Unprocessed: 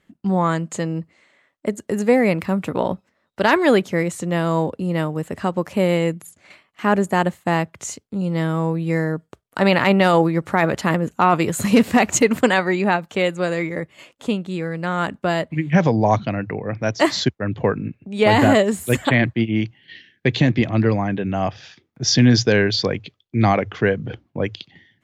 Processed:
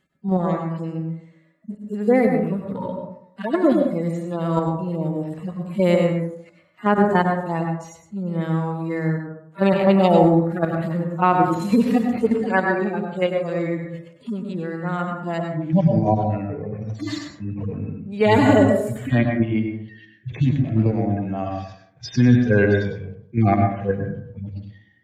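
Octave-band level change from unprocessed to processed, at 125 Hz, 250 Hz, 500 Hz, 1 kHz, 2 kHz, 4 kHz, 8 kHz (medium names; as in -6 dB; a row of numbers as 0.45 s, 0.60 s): 0.0 dB, -0.5 dB, -1.5 dB, -2.0 dB, -6.0 dB, -11.5 dB, under -15 dB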